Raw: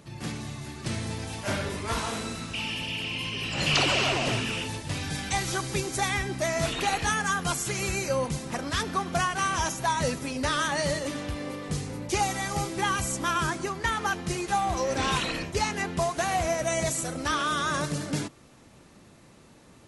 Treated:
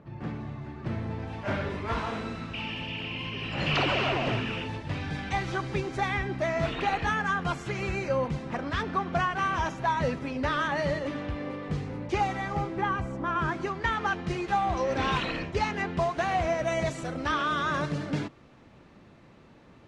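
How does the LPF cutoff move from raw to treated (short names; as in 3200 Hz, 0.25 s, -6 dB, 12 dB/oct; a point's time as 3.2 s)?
1.09 s 1500 Hz
1.62 s 2500 Hz
12.27 s 2500 Hz
13.24 s 1200 Hz
13.63 s 3100 Hz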